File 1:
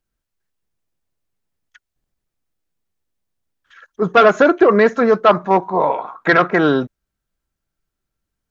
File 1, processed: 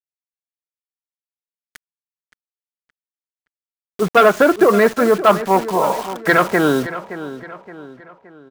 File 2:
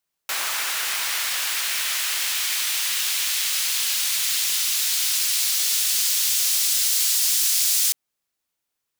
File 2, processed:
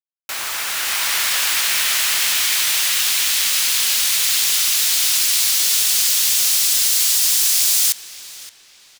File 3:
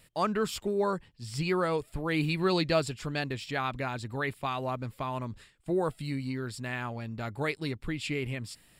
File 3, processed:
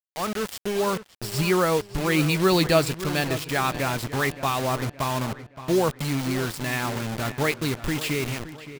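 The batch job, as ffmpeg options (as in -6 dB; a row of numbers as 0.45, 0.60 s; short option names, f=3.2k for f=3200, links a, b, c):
-filter_complex "[0:a]dynaudnorm=f=340:g=5:m=8dB,acrusher=bits=4:mix=0:aa=0.000001,asplit=2[a][b];[b]adelay=570,lowpass=f=3.7k:p=1,volume=-13.5dB,asplit=2[c][d];[d]adelay=570,lowpass=f=3.7k:p=1,volume=0.44,asplit=2[e][f];[f]adelay=570,lowpass=f=3.7k:p=1,volume=0.44,asplit=2[g][h];[h]adelay=570,lowpass=f=3.7k:p=1,volume=0.44[i];[c][e][g][i]amix=inputs=4:normalize=0[j];[a][j]amix=inputs=2:normalize=0,volume=-1dB"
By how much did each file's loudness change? -0.5, +5.0, +7.0 LU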